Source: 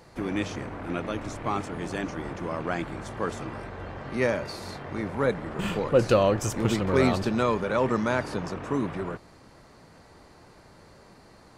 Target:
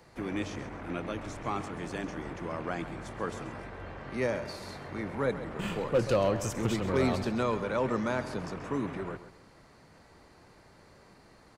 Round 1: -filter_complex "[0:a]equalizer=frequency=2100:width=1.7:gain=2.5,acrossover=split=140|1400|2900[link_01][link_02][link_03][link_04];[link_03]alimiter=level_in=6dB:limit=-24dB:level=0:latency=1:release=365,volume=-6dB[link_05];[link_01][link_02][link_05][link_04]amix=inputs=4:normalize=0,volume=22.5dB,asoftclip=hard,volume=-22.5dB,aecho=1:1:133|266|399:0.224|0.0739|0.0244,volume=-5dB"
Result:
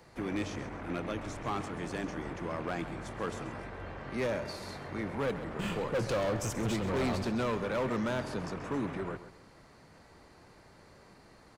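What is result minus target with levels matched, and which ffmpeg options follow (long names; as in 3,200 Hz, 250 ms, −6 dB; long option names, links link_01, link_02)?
gain into a clipping stage and back: distortion +14 dB
-filter_complex "[0:a]equalizer=frequency=2100:width=1.7:gain=2.5,acrossover=split=140|1400|2900[link_01][link_02][link_03][link_04];[link_03]alimiter=level_in=6dB:limit=-24dB:level=0:latency=1:release=365,volume=-6dB[link_05];[link_01][link_02][link_05][link_04]amix=inputs=4:normalize=0,volume=13.5dB,asoftclip=hard,volume=-13.5dB,aecho=1:1:133|266|399:0.224|0.0739|0.0244,volume=-5dB"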